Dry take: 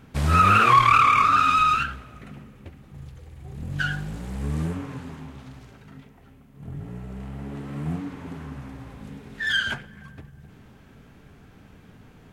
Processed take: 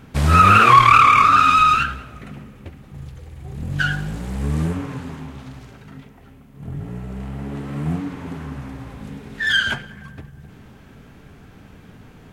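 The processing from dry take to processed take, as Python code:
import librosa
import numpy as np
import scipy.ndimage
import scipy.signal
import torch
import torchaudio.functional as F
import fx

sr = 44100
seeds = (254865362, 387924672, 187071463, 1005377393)

y = x + 10.0 ** (-23.0 / 20.0) * np.pad(x, (int(188 * sr / 1000.0), 0))[:len(x)]
y = y * librosa.db_to_amplitude(5.5)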